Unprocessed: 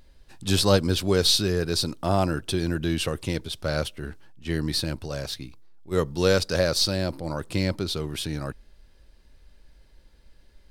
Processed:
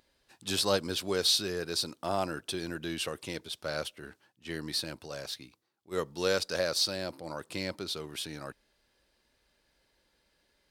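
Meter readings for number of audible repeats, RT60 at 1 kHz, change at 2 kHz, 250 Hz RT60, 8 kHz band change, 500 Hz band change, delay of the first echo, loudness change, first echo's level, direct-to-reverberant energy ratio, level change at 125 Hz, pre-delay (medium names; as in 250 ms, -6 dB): no echo, no reverb, -5.5 dB, no reverb, -5.0 dB, -7.5 dB, no echo, -7.0 dB, no echo, no reverb, -16.5 dB, no reverb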